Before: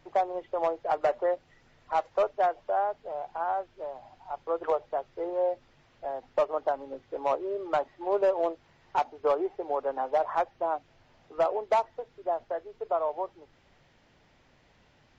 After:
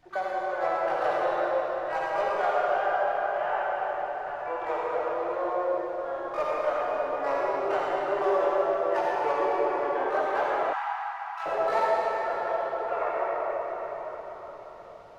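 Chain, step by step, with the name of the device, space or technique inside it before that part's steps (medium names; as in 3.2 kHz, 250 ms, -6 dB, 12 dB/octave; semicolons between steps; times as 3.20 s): shimmer-style reverb (harmony voices +12 st -8 dB; reverberation RT60 5.4 s, pre-delay 43 ms, DRR -7 dB); 10.73–11.46 s: steep high-pass 760 Hz 96 dB/octave; trim -6 dB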